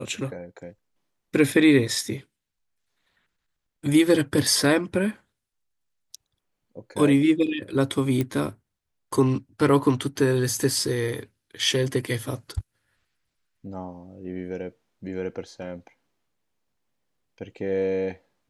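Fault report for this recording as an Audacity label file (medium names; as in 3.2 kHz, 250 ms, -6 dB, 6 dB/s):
8.210000	8.210000	pop -13 dBFS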